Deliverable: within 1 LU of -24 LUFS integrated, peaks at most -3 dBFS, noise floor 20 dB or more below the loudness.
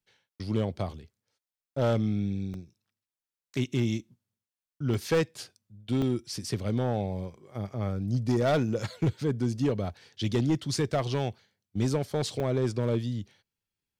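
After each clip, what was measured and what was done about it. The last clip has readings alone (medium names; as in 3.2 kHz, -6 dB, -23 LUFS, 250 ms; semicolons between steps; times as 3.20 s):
clipped samples 1.3%; clipping level -19.5 dBFS; dropouts 4; longest dropout 1.2 ms; loudness -30.0 LUFS; peak level -19.5 dBFS; loudness target -24.0 LUFS
-> clip repair -19.5 dBFS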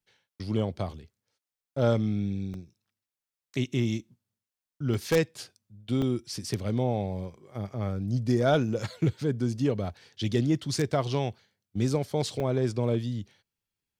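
clipped samples 0.0%; dropouts 4; longest dropout 1.2 ms
-> interpolate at 2.54/4.94/6.02/12.40 s, 1.2 ms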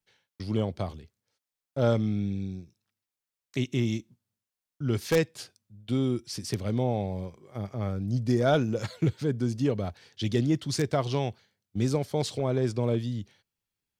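dropouts 0; loudness -29.5 LUFS; peak level -10.5 dBFS; loudness target -24.0 LUFS
-> trim +5.5 dB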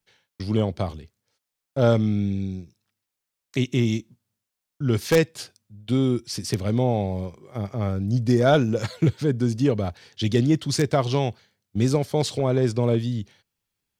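loudness -24.0 LUFS; peak level -5.0 dBFS; noise floor -84 dBFS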